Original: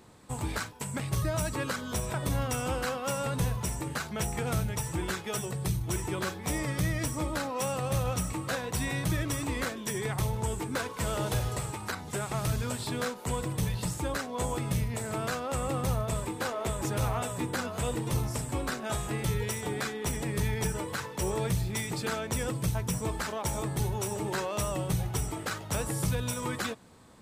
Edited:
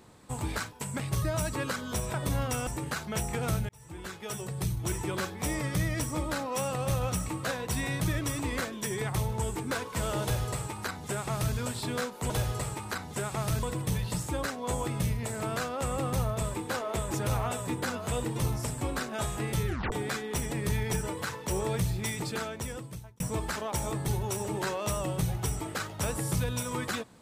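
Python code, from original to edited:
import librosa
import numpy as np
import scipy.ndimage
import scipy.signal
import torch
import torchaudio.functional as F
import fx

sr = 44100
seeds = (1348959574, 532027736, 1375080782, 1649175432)

y = fx.edit(x, sr, fx.cut(start_s=2.67, length_s=1.04),
    fx.fade_in_span(start_s=4.73, length_s=1.39, curve='qsin'),
    fx.duplicate(start_s=11.27, length_s=1.33, to_s=13.34),
    fx.tape_stop(start_s=19.38, length_s=0.25),
    fx.fade_out_span(start_s=21.9, length_s=1.01), tone=tone)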